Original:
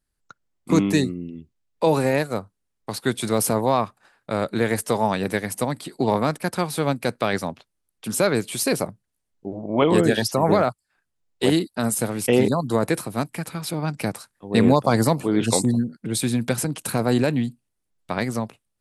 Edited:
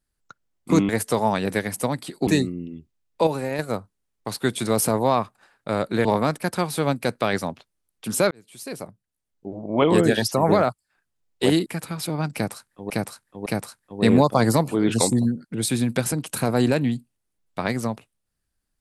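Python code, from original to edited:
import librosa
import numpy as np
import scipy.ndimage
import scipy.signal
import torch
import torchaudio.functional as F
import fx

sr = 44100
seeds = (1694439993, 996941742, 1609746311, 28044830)

y = fx.edit(x, sr, fx.clip_gain(start_s=1.89, length_s=0.32, db=-7.0),
    fx.move(start_s=4.67, length_s=1.38, to_s=0.89),
    fx.fade_in_span(start_s=8.31, length_s=1.57),
    fx.cut(start_s=11.66, length_s=1.64),
    fx.repeat(start_s=13.98, length_s=0.56, count=3), tone=tone)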